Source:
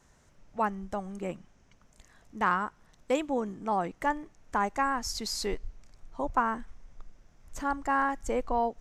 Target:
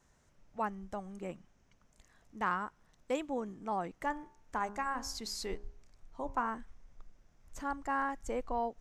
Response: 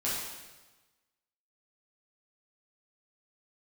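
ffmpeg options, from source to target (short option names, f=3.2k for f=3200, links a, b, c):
-filter_complex "[0:a]asettb=1/sr,asplit=3[a][b][c];[a]atrim=end=4.084[d];[b]atrim=start=4.08:end=6.51,asetpts=PTS-STARTPTS,afade=t=in:d=0.004:c=qsin,afade=t=out:st=2.426:d=0.004:c=qsin,bandreject=f=68.24:t=h:w=4,bandreject=f=136.48:t=h:w=4,bandreject=f=204.72:t=h:w=4,bandreject=f=272.96:t=h:w=4,bandreject=f=341.2:t=h:w=4,bandreject=f=409.44:t=h:w=4,bandreject=f=477.68:t=h:w=4,bandreject=f=545.92:t=h:w=4,bandreject=f=614.16:t=h:w=4,bandreject=f=682.4:t=h:w=4,bandreject=f=750.64:t=h:w=4,bandreject=f=818.88:t=h:w=4,bandreject=f=887.12:t=h:w=4,bandreject=f=955.36:t=h:w=4,bandreject=f=1.0236k:t=h:w=4,bandreject=f=1.09184k:t=h:w=4,bandreject=f=1.16008k:t=h:w=4,bandreject=f=1.22832k:t=h:w=4,bandreject=f=1.29656k:t=h:w=4,bandreject=f=1.3648k:t=h:w=4,bandreject=f=1.43304k:t=h:w=4,bandreject=f=1.50128k:t=h:w=4,bandreject=f=1.56952k:t=h:w=4,bandreject=f=1.63776k:t=h:w=4,bandreject=f=1.706k:t=h:w=4[e];[c]atrim=start=6.506[f];[d][e]acrossfade=d=0.004:c1=hsin:c2=qsin[g];[g][f]acrossfade=d=0.004:c1=qsin:c2=hsin,volume=-6.5dB"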